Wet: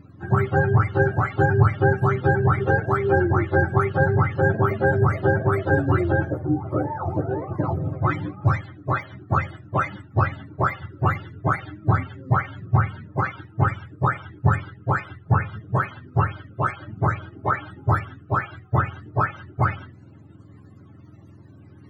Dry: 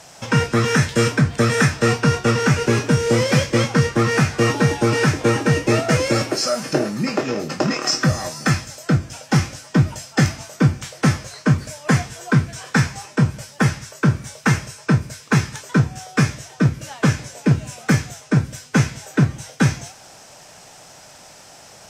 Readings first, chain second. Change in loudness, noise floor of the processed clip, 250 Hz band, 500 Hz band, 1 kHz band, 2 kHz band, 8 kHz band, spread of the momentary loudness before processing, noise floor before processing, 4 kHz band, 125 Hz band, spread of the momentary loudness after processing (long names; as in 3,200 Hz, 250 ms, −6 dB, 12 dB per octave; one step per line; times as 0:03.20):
−3.5 dB, −48 dBFS, −8.0 dB, −2.5 dB, +2.5 dB, −3.5 dB, below −30 dB, 5 LU, −45 dBFS, below −20 dB, −3.0 dB, 7 LU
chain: frequency axis turned over on the octave scale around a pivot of 430 Hz
notch comb filter 240 Hz